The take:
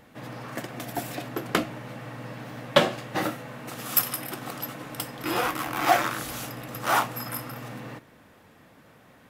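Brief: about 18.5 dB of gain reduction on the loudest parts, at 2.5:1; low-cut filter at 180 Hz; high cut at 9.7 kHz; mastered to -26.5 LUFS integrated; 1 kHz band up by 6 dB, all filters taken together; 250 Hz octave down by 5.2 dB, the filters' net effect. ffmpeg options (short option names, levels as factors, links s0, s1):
-af "highpass=180,lowpass=9700,equalizer=f=250:t=o:g=-6.5,equalizer=f=1000:t=o:g=8.5,acompressor=threshold=0.01:ratio=2.5,volume=4.22"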